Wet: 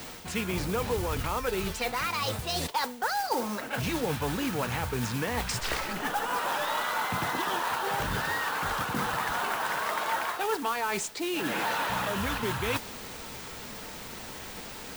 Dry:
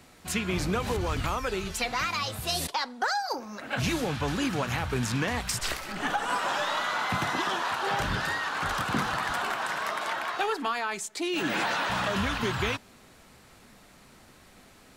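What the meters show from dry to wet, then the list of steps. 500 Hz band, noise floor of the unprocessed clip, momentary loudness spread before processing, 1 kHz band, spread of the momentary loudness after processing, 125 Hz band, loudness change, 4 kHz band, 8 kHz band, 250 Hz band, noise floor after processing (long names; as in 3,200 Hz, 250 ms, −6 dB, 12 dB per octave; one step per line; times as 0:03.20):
+0.5 dB, −55 dBFS, 3 LU, 0.0 dB, 10 LU, −2.0 dB, −1.5 dB, −2.0 dB, −0.5 dB, −1.5 dB, −42 dBFS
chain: in parallel at −12 dB: bit-depth reduction 6 bits, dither triangular
on the sum: parametric band 13,000 Hz −12 dB 1.1 octaves
noise that follows the level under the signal 12 dB
reversed playback
downward compressor 6 to 1, threshold −36 dBFS, peak gain reduction 14.5 dB
reversed playback
hollow resonant body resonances 470/900 Hz, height 6 dB
level +7.5 dB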